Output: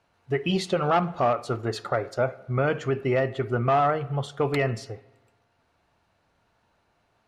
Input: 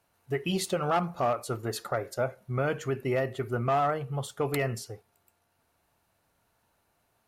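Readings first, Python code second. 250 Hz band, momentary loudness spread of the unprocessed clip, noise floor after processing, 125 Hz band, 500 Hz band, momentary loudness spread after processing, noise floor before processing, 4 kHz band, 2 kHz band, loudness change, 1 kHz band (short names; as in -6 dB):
+4.5 dB, 7 LU, -70 dBFS, +4.5 dB, +4.5 dB, 7 LU, -73 dBFS, +3.0 dB, +4.5 dB, +4.5 dB, +4.5 dB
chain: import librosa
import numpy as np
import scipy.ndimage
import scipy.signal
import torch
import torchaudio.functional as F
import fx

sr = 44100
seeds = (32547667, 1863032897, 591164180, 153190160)

y = scipy.signal.sosfilt(scipy.signal.butter(2, 4800.0, 'lowpass', fs=sr, output='sos'), x)
y = fx.rev_spring(y, sr, rt60_s=1.2, pass_ms=(49, 54), chirp_ms=25, drr_db=19.0)
y = F.gain(torch.from_numpy(y), 4.5).numpy()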